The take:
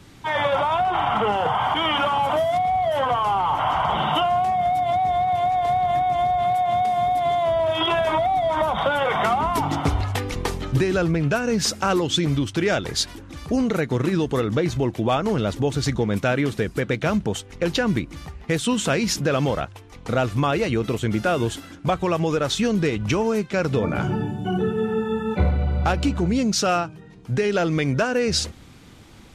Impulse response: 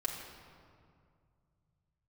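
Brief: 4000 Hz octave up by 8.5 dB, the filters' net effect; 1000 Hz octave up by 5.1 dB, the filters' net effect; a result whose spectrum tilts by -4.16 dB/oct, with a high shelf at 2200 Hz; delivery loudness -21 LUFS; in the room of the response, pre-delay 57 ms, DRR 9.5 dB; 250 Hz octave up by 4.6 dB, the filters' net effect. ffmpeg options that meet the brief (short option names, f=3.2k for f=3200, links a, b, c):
-filter_complex "[0:a]equalizer=f=250:t=o:g=5.5,equalizer=f=1k:t=o:g=5.5,highshelf=f=2.2k:g=6.5,equalizer=f=4k:t=o:g=4.5,asplit=2[a][b];[1:a]atrim=start_sample=2205,adelay=57[c];[b][c]afir=irnorm=-1:irlink=0,volume=-12dB[d];[a][d]amix=inputs=2:normalize=0,volume=-4dB"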